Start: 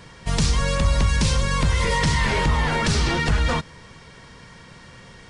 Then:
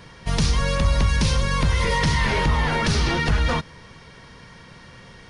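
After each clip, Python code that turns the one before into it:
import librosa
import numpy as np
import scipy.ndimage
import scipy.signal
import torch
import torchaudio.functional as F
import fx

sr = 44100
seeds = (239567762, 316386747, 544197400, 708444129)

y = fx.peak_eq(x, sr, hz=7700.0, db=-10.0, octaves=0.26)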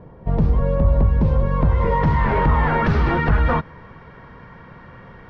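y = fx.filter_sweep_lowpass(x, sr, from_hz=650.0, to_hz=1400.0, start_s=1.18, end_s=2.63, q=1.1)
y = y * librosa.db_to_amplitude(3.5)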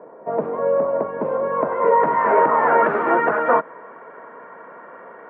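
y = fx.cabinet(x, sr, low_hz=270.0, low_slope=24, high_hz=2100.0, hz=(450.0, 640.0, 1000.0, 1400.0), db=(6, 10, 5, 5))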